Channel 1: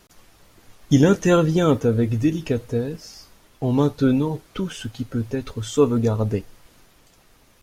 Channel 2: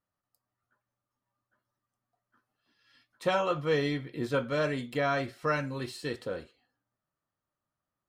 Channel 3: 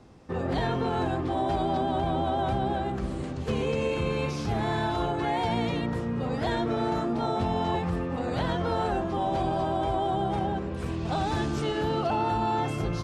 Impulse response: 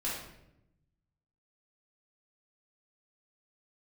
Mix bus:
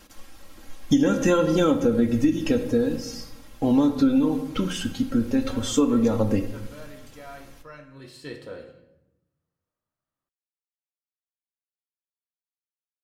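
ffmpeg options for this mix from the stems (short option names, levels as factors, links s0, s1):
-filter_complex "[0:a]aecho=1:1:3.7:0.68,volume=1,asplit=2[s0][s1];[s1]volume=0.299[s2];[1:a]adelay=2200,volume=0.501,afade=t=in:st=7.93:d=0.3:silence=0.237137,asplit=2[s3][s4];[s4]volume=0.531[s5];[3:a]atrim=start_sample=2205[s6];[s2][s5]amix=inputs=2:normalize=0[s7];[s7][s6]afir=irnorm=-1:irlink=0[s8];[s0][s3][s8]amix=inputs=3:normalize=0,acompressor=threshold=0.158:ratio=6"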